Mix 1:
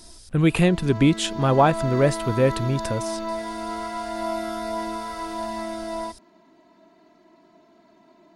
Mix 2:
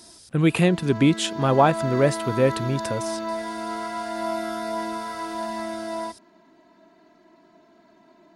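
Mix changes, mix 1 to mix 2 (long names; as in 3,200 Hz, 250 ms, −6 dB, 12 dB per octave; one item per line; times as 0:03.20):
speech: add high-pass filter 120 Hz 12 dB per octave
background: add parametric band 1,600 Hz +5 dB 0.23 octaves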